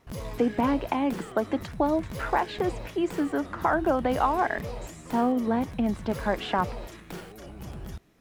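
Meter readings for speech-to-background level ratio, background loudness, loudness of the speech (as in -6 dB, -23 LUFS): 12.0 dB, -39.5 LUFS, -27.5 LUFS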